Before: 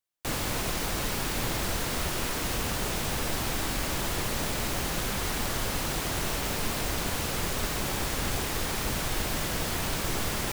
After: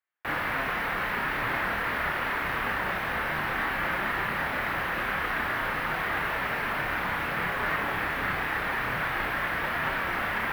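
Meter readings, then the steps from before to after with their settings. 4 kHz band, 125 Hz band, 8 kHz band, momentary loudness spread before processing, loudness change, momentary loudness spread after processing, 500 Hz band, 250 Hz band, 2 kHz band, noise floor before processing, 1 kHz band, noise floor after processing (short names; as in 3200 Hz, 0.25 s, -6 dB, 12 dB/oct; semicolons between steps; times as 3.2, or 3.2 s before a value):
-6.0 dB, -6.0 dB, -20.0 dB, 0 LU, +1.5 dB, 1 LU, -0.5 dB, -3.5 dB, +8.5 dB, -32 dBFS, +6.0 dB, -31 dBFS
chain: HPF 110 Hz 6 dB/oct; chorus voices 6, 0.54 Hz, delay 30 ms, depth 4.1 ms; EQ curve 400 Hz 0 dB, 1800 Hz +14 dB, 7100 Hz -22 dB, 13000 Hz -8 dB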